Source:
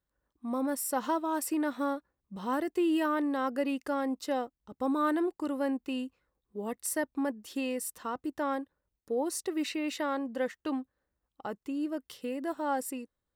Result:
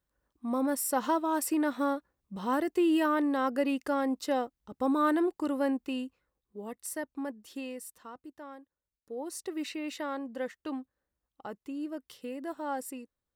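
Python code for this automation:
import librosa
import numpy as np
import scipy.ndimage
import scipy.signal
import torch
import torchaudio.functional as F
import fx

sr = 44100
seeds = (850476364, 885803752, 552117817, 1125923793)

y = fx.gain(x, sr, db=fx.line((5.66, 2.0), (6.69, -5.0), (7.54, -5.0), (8.61, -15.5), (9.47, -3.5)))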